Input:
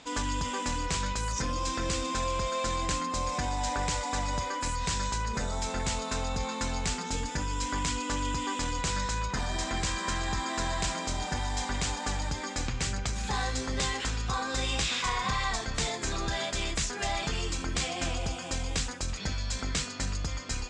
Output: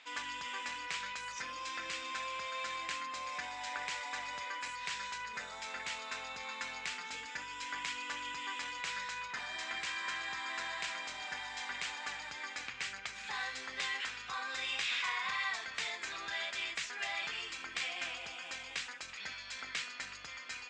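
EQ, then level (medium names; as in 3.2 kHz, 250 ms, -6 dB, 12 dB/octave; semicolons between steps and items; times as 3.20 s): band-pass filter 2.2 kHz, Q 1.5; 0.0 dB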